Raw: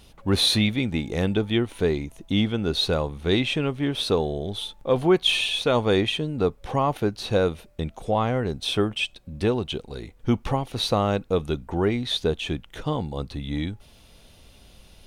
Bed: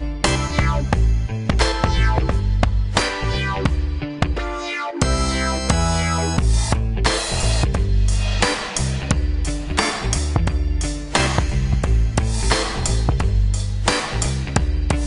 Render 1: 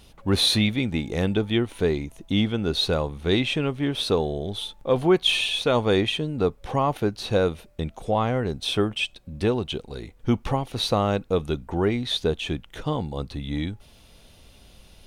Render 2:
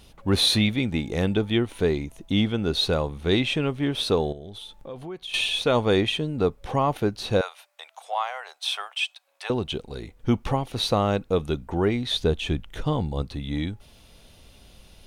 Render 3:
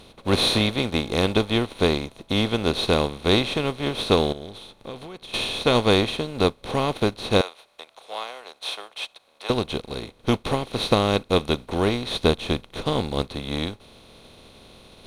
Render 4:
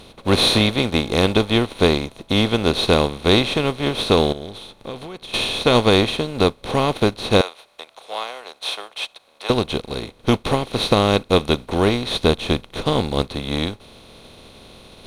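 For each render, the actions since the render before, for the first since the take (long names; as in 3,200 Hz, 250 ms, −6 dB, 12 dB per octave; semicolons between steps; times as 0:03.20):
no processing that can be heard
0:04.32–0:05.34: downward compressor 3 to 1, threshold −39 dBFS; 0:07.41–0:09.50: Butterworth high-pass 710 Hz; 0:12.13–0:13.22: low-shelf EQ 98 Hz +9 dB
compressor on every frequency bin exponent 0.4; expander for the loud parts 2.5 to 1, over −30 dBFS
level +4.5 dB; brickwall limiter −2 dBFS, peak gain reduction 3 dB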